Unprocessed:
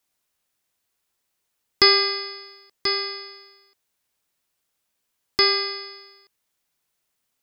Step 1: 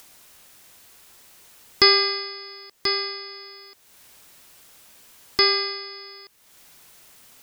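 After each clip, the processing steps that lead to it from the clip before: upward compressor, threshold -30 dBFS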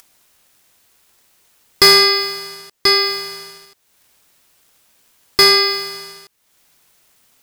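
waveshaping leveller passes 3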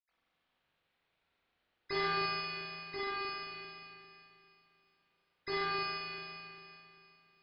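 reverberation RT60 2.7 s, pre-delay 77 ms

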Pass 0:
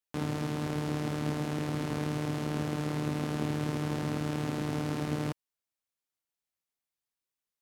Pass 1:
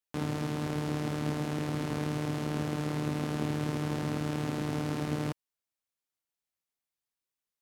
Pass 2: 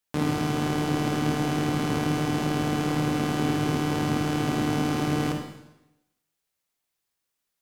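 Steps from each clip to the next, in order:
no audible change
in parallel at -11.5 dB: saturation -26.5 dBFS, distortion -15 dB; on the sum: reverberation RT60 0.90 s, pre-delay 39 ms, DRR 3 dB; trim +5.5 dB

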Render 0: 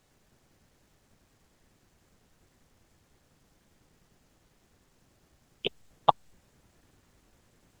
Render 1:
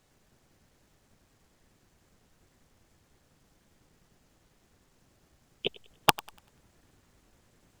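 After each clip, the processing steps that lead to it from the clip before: integer overflow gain 4 dB; thinning echo 97 ms, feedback 35%, level -20 dB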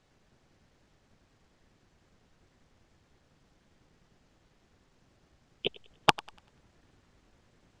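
low-pass 5.5 kHz 12 dB/octave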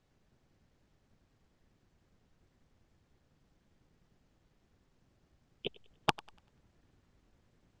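bass shelf 360 Hz +5.5 dB; trim -8.5 dB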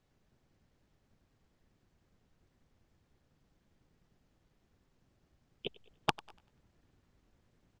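speakerphone echo 210 ms, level -26 dB; trim -1.5 dB

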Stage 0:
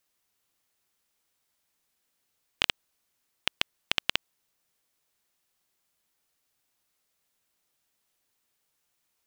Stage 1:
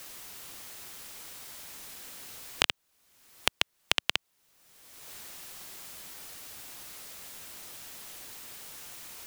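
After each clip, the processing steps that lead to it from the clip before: three bands compressed up and down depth 100%; trim +1.5 dB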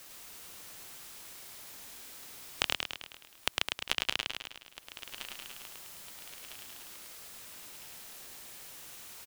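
backward echo that repeats 652 ms, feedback 62%, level -14 dB; feedback delay 105 ms, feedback 55%, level -3 dB; trim -5.5 dB

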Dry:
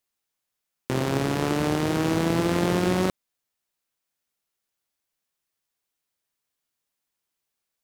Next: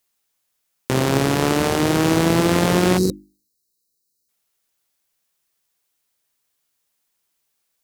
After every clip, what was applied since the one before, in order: hum notches 50/100/150/200/250/300/350 Hz; time-frequency box 2.98–4.29 s, 520–3800 Hz -23 dB; treble shelf 5 kHz +4.5 dB; trim +6.5 dB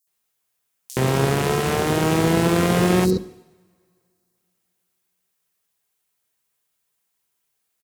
comb of notches 290 Hz; bands offset in time highs, lows 70 ms, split 5 kHz; two-slope reverb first 0.99 s, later 3 s, from -23 dB, DRR 16.5 dB

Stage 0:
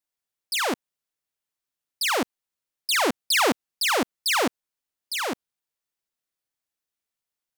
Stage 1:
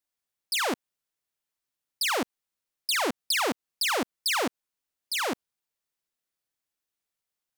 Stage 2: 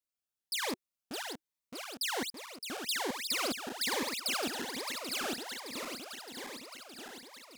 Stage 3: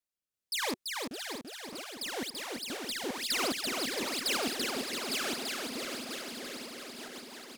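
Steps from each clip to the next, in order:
compression, threshold -24 dBFS, peak gain reduction 6.5 dB
backward echo that repeats 308 ms, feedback 82%, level -6 dB; Shepard-style phaser rising 1.2 Hz; trim -6.5 dB
saturation -23.5 dBFS, distortion -25 dB; rotary cabinet horn 1.1 Hz, later 8 Hz, at 6.27 s; on a send: feedback delay 336 ms, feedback 56%, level -4 dB; on the sum: trim +3 dB

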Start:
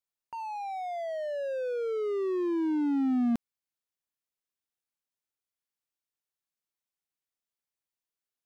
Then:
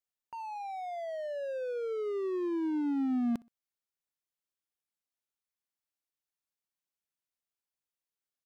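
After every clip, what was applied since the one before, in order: feedback delay 62 ms, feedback 30%, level -24 dB; trim -3.5 dB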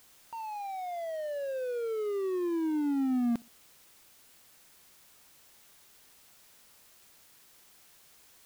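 added noise white -61 dBFS; trim +1.5 dB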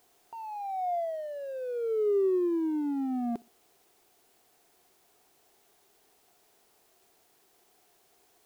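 small resonant body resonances 400/700 Hz, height 15 dB, ringing for 25 ms; trim -8 dB

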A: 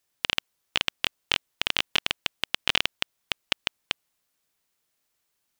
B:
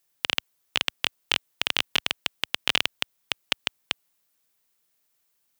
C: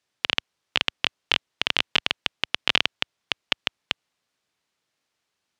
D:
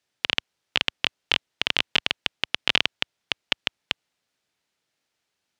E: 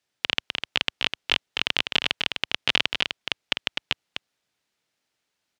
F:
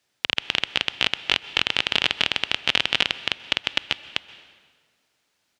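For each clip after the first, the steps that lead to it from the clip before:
high-pass 73 Hz 12 dB/octave; treble shelf 11 kHz +8 dB
low-pass 4.9 kHz 12 dB/octave; trim +2.5 dB
peaking EQ 1.1 kHz -5 dB 0.24 oct
delay 253 ms -6 dB; trim -1 dB
peak limiter -8.5 dBFS, peak gain reduction 6 dB; plate-style reverb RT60 1.6 s, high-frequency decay 0.8×, pre-delay 115 ms, DRR 15.5 dB; trim +7 dB

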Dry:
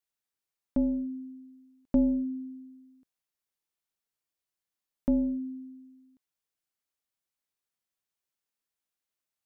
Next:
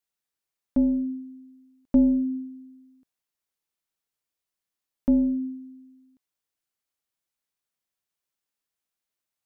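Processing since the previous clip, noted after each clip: dynamic bell 260 Hz, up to +4 dB, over -37 dBFS; trim +1.5 dB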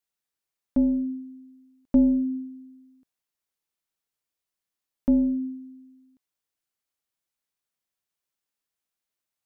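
no audible change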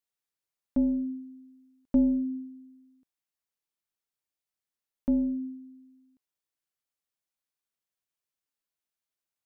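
gain riding 2 s; trim -3 dB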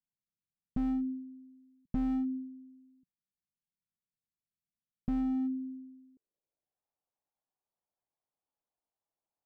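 low-pass sweep 180 Hz -> 820 Hz, 5.23–6.84 s; slew-rate limiter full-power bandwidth 8.7 Hz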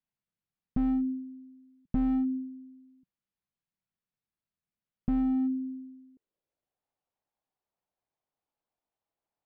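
distance through air 220 m; trim +4.5 dB

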